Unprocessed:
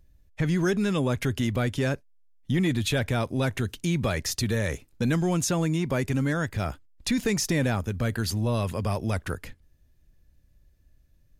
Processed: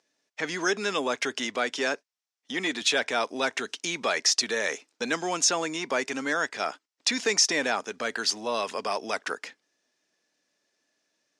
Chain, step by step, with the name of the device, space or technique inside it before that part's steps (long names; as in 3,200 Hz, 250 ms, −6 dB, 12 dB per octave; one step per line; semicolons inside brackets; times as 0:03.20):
phone speaker on a table (loudspeaker in its box 350–7,900 Hz, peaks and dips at 350 Hz −7 dB, 540 Hz −6 dB, 5,500 Hz +6 dB)
0:01.56–0:02.82: high-pass filter 150 Hz
level +5 dB